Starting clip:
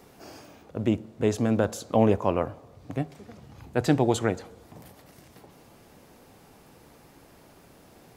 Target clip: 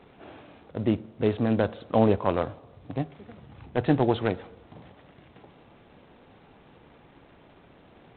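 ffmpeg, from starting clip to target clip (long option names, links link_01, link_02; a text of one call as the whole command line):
ffmpeg -i in.wav -ar 8000 -c:a adpcm_g726 -b:a 24k out.wav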